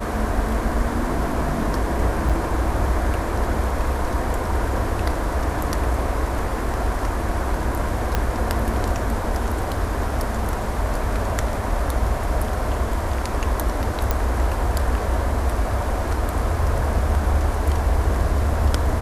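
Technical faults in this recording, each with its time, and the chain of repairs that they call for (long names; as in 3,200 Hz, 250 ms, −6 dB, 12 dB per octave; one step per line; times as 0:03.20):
0:02.29–0:02.30: drop-out 6 ms
0:08.15: click −6 dBFS
0:14.11: click −6 dBFS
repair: click removal
repair the gap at 0:02.29, 6 ms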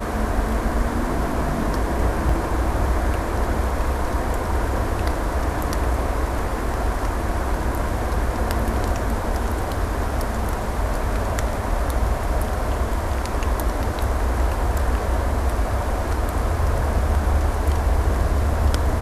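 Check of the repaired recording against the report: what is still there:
0:08.15: click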